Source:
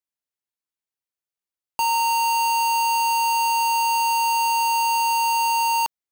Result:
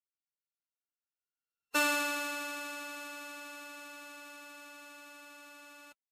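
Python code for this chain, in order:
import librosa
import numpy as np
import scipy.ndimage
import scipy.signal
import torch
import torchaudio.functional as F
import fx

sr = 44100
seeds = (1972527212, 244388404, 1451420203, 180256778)

y = np.r_[np.sort(x[:len(x) // 32 * 32].reshape(-1, 32), axis=1).ravel(), x[len(x) // 32 * 32:]]
y = fx.doppler_pass(y, sr, speed_mps=9, closest_m=1.5, pass_at_s=1.71)
y = fx.pitch_keep_formants(y, sr, semitones=-7.5)
y = y * 10.0 ** (-5.5 / 20.0)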